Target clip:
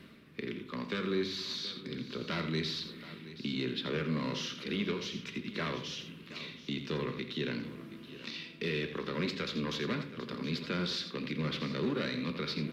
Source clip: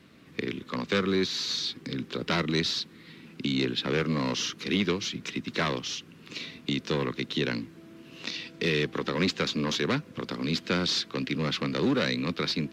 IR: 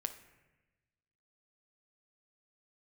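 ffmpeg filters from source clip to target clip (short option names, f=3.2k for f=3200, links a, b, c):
-filter_complex "[0:a]asplit=2[a][b];[b]alimiter=limit=-20dB:level=0:latency=1,volume=-2dB[c];[a][c]amix=inputs=2:normalize=0,equalizer=f=6.8k:t=o:w=0.72:g=-7.5,areverse,acompressor=mode=upward:threshold=-28dB:ratio=2.5,areverse,equalizer=f=790:t=o:w=0.34:g=-6.5,aecho=1:1:84|726:0.316|0.178[d];[1:a]atrim=start_sample=2205,asetrate=61740,aresample=44100[e];[d][e]afir=irnorm=-1:irlink=0,volume=-7.5dB"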